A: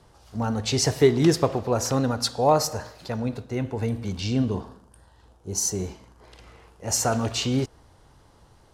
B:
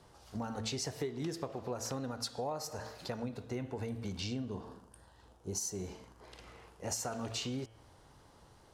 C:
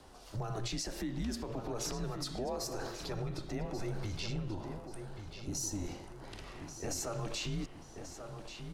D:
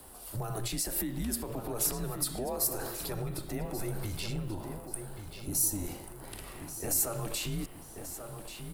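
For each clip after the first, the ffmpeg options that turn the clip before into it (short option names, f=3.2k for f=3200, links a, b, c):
-af "lowshelf=f=80:g=-7.5,bandreject=f=111.5:t=h:w=4,bandreject=f=223:t=h:w=4,bandreject=f=334.5:t=h:w=4,bandreject=f=446:t=h:w=4,bandreject=f=557.5:t=h:w=4,bandreject=f=669:t=h:w=4,bandreject=f=780.5:t=h:w=4,bandreject=f=892:t=h:w=4,bandreject=f=1.0035k:t=h:w=4,bandreject=f=1.115k:t=h:w=4,bandreject=f=1.2265k:t=h:w=4,bandreject=f=1.338k:t=h:w=4,bandreject=f=1.4495k:t=h:w=4,bandreject=f=1.561k:t=h:w=4,bandreject=f=1.6725k:t=h:w=4,bandreject=f=1.784k:t=h:w=4,bandreject=f=1.8955k:t=h:w=4,bandreject=f=2.007k:t=h:w=4,bandreject=f=2.1185k:t=h:w=4,bandreject=f=2.23k:t=h:w=4,bandreject=f=2.3415k:t=h:w=4,bandreject=f=2.453k:t=h:w=4,bandreject=f=2.5645k:t=h:w=4,bandreject=f=2.676k:t=h:w=4,bandreject=f=2.7875k:t=h:w=4,bandreject=f=2.899k:t=h:w=4,bandreject=f=3.0105k:t=h:w=4,bandreject=f=3.122k:t=h:w=4,bandreject=f=3.2335k:t=h:w=4,bandreject=f=3.345k:t=h:w=4,bandreject=f=3.4565k:t=h:w=4,acompressor=threshold=-32dB:ratio=8,volume=-3dB"
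-filter_complex "[0:a]alimiter=level_in=9dB:limit=-24dB:level=0:latency=1:release=50,volume=-9dB,afreqshift=-100,asplit=2[a][b];[b]adelay=1136,lowpass=f=4.4k:p=1,volume=-8dB,asplit=2[c][d];[d]adelay=1136,lowpass=f=4.4k:p=1,volume=0.46,asplit=2[e][f];[f]adelay=1136,lowpass=f=4.4k:p=1,volume=0.46,asplit=2[g][h];[h]adelay=1136,lowpass=f=4.4k:p=1,volume=0.46,asplit=2[i][j];[j]adelay=1136,lowpass=f=4.4k:p=1,volume=0.46[k];[a][c][e][g][i][k]amix=inputs=6:normalize=0,volume=4.5dB"
-af "aexciter=amount=10:drive=5.9:freq=8.7k,volume=2dB"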